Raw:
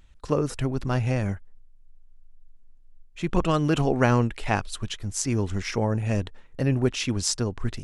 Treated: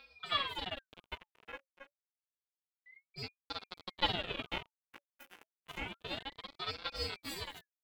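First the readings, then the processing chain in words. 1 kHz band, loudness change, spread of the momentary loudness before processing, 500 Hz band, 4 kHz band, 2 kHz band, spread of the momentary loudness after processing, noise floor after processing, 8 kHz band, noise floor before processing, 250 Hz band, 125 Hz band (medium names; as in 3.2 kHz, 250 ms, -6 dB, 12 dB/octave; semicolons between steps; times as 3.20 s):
-11.0 dB, -13.5 dB, 9 LU, -19.5 dB, -2.5 dB, -9.0 dB, 19 LU, under -85 dBFS, -25.5 dB, -51 dBFS, -24.5 dB, -27.5 dB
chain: gated-style reverb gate 450 ms rising, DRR 4.5 dB; robot voice 180 Hz; high-order bell 1 kHz +8 dB 2.9 oct; feedback comb 280 Hz, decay 0.39 s, harmonics all, mix 100%; on a send: feedback delay 270 ms, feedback 36%, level -11 dB; on the sum: one-sided clip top -44 dBFS; ten-band graphic EQ 250 Hz +11 dB, 500 Hz -11 dB, 1 kHz +9 dB, 2 kHz +12 dB, 4 kHz -9 dB, 8 kHz -9 dB; in parallel at 0 dB: compression, threshold -55 dBFS, peak gain reduction 22.5 dB; on the sum: ring modulator with a swept carrier 1.5 kHz, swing 65%, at 0.29 Hz; trim +7.5 dB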